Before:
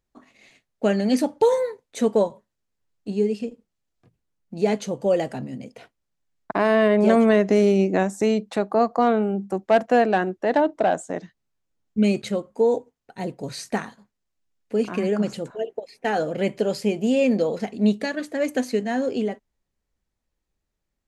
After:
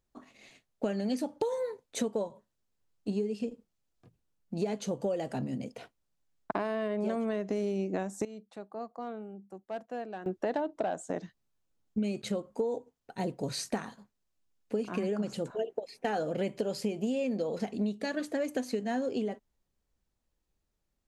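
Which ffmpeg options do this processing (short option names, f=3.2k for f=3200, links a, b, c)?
-filter_complex "[0:a]asplit=3[a][b][c];[a]atrim=end=8.25,asetpts=PTS-STARTPTS,afade=t=out:st=7.98:d=0.27:c=log:silence=0.105925[d];[b]atrim=start=8.25:end=10.26,asetpts=PTS-STARTPTS,volume=-19.5dB[e];[c]atrim=start=10.26,asetpts=PTS-STARTPTS,afade=t=in:d=0.27:c=log:silence=0.105925[f];[d][e][f]concat=n=3:v=0:a=1,equalizer=f=2k:t=o:w=0.63:g=-3.5,acompressor=threshold=-27dB:ratio=12,volume=-1dB"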